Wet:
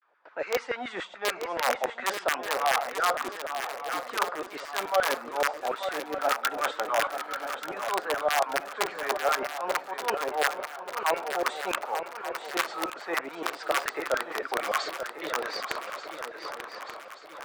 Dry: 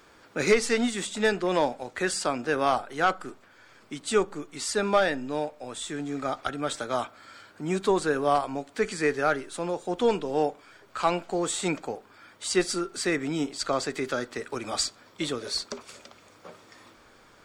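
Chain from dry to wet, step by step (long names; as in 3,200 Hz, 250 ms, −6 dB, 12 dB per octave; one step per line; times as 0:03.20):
low-pass filter 2,700 Hz 12 dB per octave
noise gate with hold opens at −44 dBFS
high-pass filter 110 Hz 24 dB per octave
spectral tilt −2 dB per octave
reversed playback
downward compressor 12 to 1, threshold −30 dBFS, peak gain reduction 17.5 dB
reversed playback
wrap-around overflow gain 24 dB
pitch vibrato 0.53 Hz 100 cents
auto-filter high-pass saw down 7 Hz 530–1,600 Hz
feedback echo with a long and a short gap by turns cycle 1,183 ms, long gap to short 3 to 1, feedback 46%, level −8.5 dB
level +6 dB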